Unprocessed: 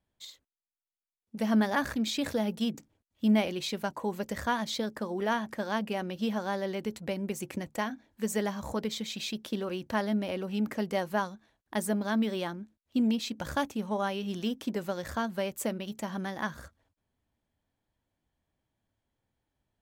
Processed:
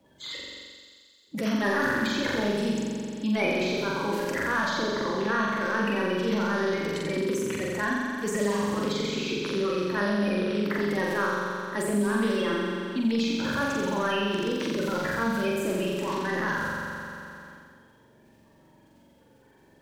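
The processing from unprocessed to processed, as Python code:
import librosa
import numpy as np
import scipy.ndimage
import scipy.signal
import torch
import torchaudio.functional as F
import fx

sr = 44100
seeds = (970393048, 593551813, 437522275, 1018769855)

y = fx.spec_quant(x, sr, step_db=30)
y = fx.highpass(y, sr, hz=270.0, slope=6)
y = fx.transient(y, sr, attack_db=-9, sustain_db=8)
y = fx.lowpass(y, sr, hz=2500.0, slope=6)
y = fx.peak_eq(y, sr, hz=720.0, db=-14.5, octaves=0.38)
y = fx.hum_notches(y, sr, base_hz=60, count=8)
y = fx.room_flutter(y, sr, wall_m=7.5, rt60_s=1.5)
y = fx.sample_gate(y, sr, floor_db=-54.5, at=(13.25, 15.43))
y = fx.band_squash(y, sr, depth_pct=70)
y = y * librosa.db_to_amplitude(5.5)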